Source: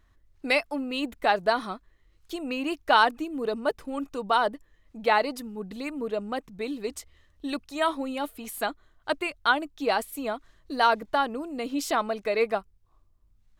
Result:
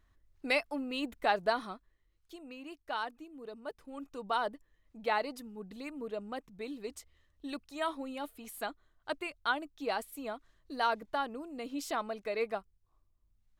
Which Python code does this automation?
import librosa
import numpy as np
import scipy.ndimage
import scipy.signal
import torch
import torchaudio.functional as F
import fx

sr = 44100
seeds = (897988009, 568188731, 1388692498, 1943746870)

y = fx.gain(x, sr, db=fx.line((1.47, -6.0), (2.55, -17.0), (3.56, -17.0), (4.26, -9.0)))